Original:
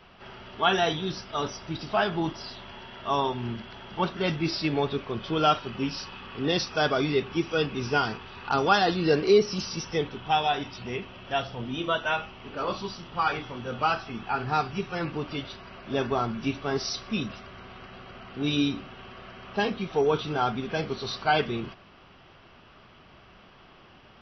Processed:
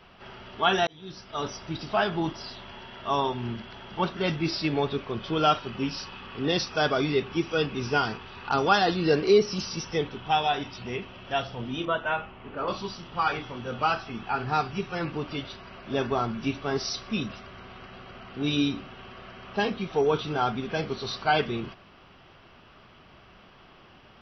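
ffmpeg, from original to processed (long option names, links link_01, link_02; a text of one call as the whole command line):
ffmpeg -i in.wav -filter_complex "[0:a]asettb=1/sr,asplit=3[link_01][link_02][link_03];[link_01]atrim=end=11.854[link_04];[link_02]atrim=start=11.85:end=12.68,asetpts=PTS-STARTPTS,afade=type=in:duration=0.004:curve=qsin,afade=type=out:start_time=0.826:duration=0.004:curve=qsin,lowpass=2300[link_05];[link_03]atrim=start=12.676[link_06];[link_04][link_05]acrossfade=duration=0.004:curve1=hsin:curve2=qsin[link_07];[link_07][link_06]acrossfade=duration=0.004:curve1=qsin:curve2=hsin,asplit=2[link_08][link_09];[link_08]atrim=end=0.87,asetpts=PTS-STARTPTS,afade=type=out:start_time=0.866:duration=0.004:curve=hsin[link_10];[link_09]atrim=start=0.87,asetpts=PTS-STARTPTS,afade=type=in:duration=0.66[link_11];[link_10][link_11]concat=n=2:v=0:a=1" out.wav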